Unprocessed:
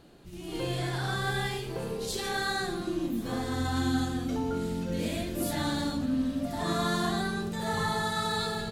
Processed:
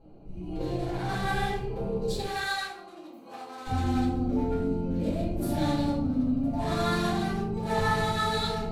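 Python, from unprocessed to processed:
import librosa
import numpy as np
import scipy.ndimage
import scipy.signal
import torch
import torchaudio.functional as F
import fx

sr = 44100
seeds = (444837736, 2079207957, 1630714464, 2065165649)

y = fx.wiener(x, sr, points=25)
y = fx.highpass(y, sr, hz=900.0, slope=12, at=(2.26, 3.67))
y = fx.room_shoebox(y, sr, seeds[0], volume_m3=64.0, walls='mixed', distance_m=2.2)
y = F.gain(torch.from_numpy(y), -6.0).numpy()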